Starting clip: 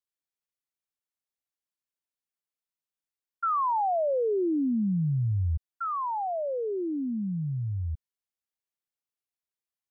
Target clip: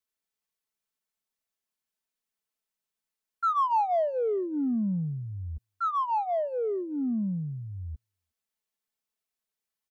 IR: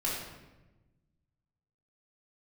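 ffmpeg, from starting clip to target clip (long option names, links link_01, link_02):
-filter_complex "[0:a]aecho=1:1:4.6:0.65,acrossover=split=210|770[link_01][link_02][link_03];[link_01]acompressor=threshold=-38dB:ratio=4[link_04];[link_02]acompressor=threshold=-31dB:ratio=4[link_05];[link_03]acompressor=threshold=-25dB:ratio=4[link_06];[link_04][link_05][link_06]amix=inputs=3:normalize=0,asplit=2[link_07][link_08];[link_08]asoftclip=type=tanh:threshold=-32.5dB,volume=-10dB[link_09];[link_07][link_09]amix=inputs=2:normalize=0,asplit=2[link_10][link_11];[link_11]adelay=360,highpass=300,lowpass=3400,asoftclip=type=hard:threshold=-29.5dB,volume=-30dB[link_12];[link_10][link_12]amix=inputs=2:normalize=0"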